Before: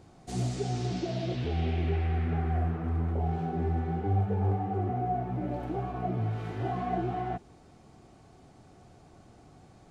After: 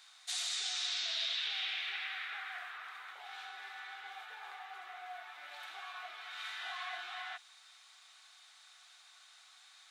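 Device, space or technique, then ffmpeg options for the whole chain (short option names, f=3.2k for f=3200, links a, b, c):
headphones lying on a table: -af "highpass=f=1.4k:w=0.5412,highpass=f=1.4k:w=1.3066,equalizer=f=3.7k:t=o:w=0.31:g=11,volume=6.5dB"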